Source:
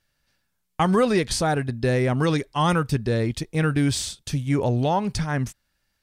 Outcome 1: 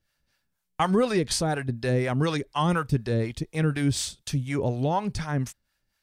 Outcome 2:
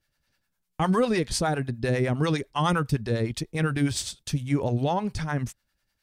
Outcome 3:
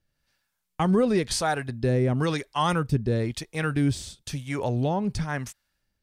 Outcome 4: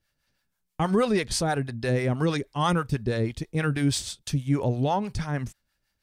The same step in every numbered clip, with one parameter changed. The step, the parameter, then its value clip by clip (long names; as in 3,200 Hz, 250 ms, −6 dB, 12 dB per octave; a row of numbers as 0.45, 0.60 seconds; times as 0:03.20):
two-band tremolo in antiphase, speed: 4.1, 9.9, 1, 6.2 Hertz